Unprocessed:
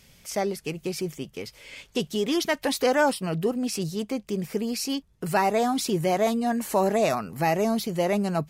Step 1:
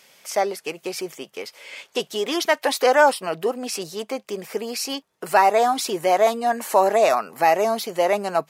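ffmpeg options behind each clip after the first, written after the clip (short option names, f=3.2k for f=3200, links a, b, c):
-af "highpass=700,tiltshelf=f=1.2k:g=5,volume=8dB"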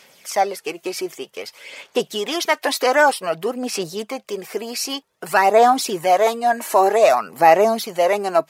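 -af "aphaser=in_gain=1:out_gain=1:delay=3.1:decay=0.42:speed=0.53:type=sinusoidal,volume=1.5dB"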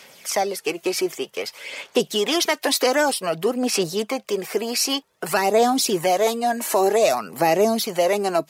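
-filter_complex "[0:a]acrossover=split=420|3000[a][b][c];[b]acompressor=threshold=-27dB:ratio=4[d];[a][d][c]amix=inputs=3:normalize=0,volume=3.5dB"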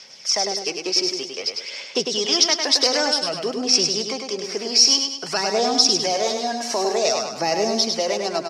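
-filter_complex "[0:a]lowpass=f=5.4k:t=q:w=7.9,asplit=2[a][b];[b]aecho=0:1:102|204|306|408|510:0.562|0.247|0.109|0.0479|0.0211[c];[a][c]amix=inputs=2:normalize=0,volume=-5dB"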